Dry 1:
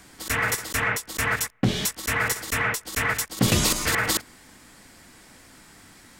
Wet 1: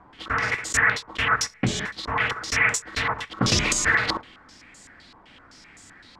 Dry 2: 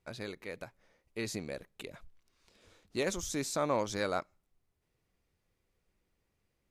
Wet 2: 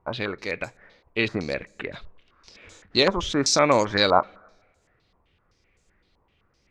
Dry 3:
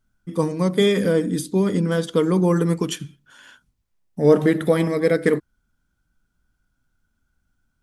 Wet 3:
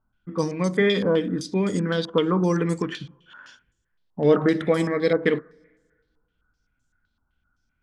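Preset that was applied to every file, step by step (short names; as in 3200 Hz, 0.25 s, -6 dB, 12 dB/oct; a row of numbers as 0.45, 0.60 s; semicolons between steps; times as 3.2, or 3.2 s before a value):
two-slope reverb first 0.22 s, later 1.5 s, from -18 dB, DRR 16.5 dB; stepped low-pass 7.8 Hz 1000–7200 Hz; match loudness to -23 LUFS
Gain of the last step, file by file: -2.5, +11.0, -3.5 dB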